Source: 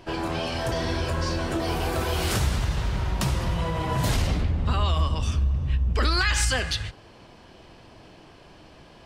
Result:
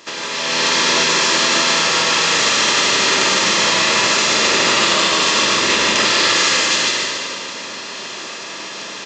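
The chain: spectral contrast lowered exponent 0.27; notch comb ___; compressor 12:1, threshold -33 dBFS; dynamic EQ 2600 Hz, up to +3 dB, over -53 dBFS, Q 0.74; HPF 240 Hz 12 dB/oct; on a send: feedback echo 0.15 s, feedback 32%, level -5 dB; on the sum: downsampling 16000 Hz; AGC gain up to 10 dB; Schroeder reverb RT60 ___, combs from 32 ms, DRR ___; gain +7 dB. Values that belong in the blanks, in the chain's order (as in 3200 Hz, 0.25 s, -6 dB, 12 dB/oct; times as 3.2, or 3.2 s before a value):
750 Hz, 2.2 s, -0.5 dB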